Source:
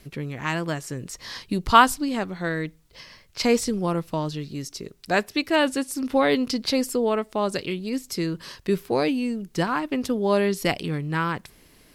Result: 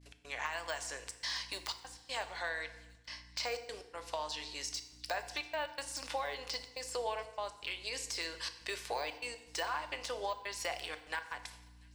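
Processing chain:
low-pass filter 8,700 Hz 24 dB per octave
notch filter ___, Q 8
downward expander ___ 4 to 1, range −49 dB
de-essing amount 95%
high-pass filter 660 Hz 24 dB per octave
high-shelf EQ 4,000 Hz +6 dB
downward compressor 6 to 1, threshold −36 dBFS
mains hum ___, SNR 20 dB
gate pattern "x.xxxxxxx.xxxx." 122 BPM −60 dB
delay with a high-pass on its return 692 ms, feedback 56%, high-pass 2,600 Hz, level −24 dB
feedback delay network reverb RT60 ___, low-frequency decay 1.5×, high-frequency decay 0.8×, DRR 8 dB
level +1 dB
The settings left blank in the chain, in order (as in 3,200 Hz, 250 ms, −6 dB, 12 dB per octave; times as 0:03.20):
1,300 Hz, −45 dBFS, 60 Hz, 0.96 s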